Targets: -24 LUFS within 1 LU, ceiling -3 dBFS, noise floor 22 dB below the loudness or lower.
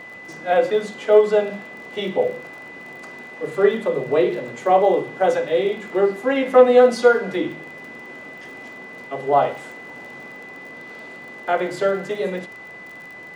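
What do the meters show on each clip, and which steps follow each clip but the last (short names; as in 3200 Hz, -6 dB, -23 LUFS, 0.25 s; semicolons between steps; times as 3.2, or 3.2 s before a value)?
ticks 35/s; steady tone 2000 Hz; tone level -37 dBFS; loudness -19.0 LUFS; peak -3.0 dBFS; loudness target -24.0 LUFS
-> de-click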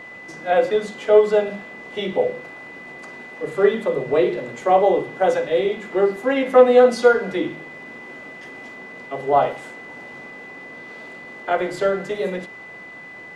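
ticks 0/s; steady tone 2000 Hz; tone level -37 dBFS
-> notch 2000 Hz, Q 30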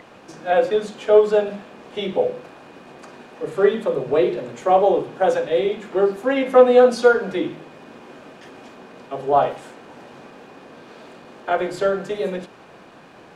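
steady tone none; loudness -19.5 LUFS; peak -2.5 dBFS; loudness target -24.0 LUFS
-> gain -4.5 dB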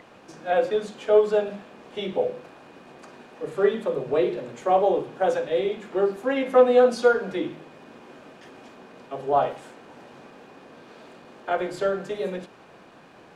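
loudness -24.0 LUFS; peak -7.0 dBFS; noise floor -50 dBFS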